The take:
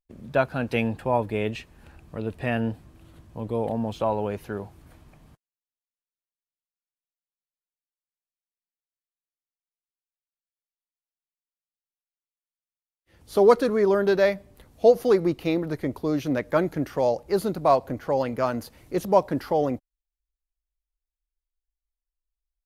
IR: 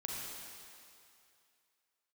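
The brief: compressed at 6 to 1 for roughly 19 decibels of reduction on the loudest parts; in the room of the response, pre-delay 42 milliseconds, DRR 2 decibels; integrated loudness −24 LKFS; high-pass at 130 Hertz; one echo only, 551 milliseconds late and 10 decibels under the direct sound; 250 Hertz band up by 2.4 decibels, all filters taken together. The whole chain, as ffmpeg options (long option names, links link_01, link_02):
-filter_complex "[0:a]highpass=130,equalizer=frequency=250:width_type=o:gain=3.5,acompressor=threshold=-32dB:ratio=6,aecho=1:1:551:0.316,asplit=2[link_01][link_02];[1:a]atrim=start_sample=2205,adelay=42[link_03];[link_02][link_03]afir=irnorm=-1:irlink=0,volume=-3dB[link_04];[link_01][link_04]amix=inputs=2:normalize=0,volume=11dB"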